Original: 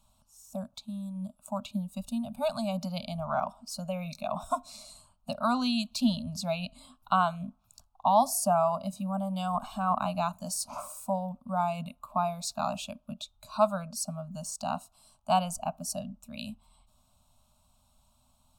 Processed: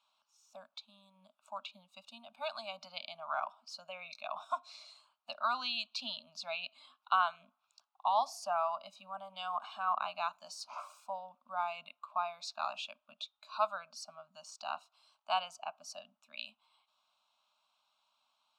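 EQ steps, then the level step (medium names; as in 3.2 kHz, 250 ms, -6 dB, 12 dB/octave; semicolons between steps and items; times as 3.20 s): high-pass 1.5 kHz 12 dB/octave; distance through air 230 m; +4.5 dB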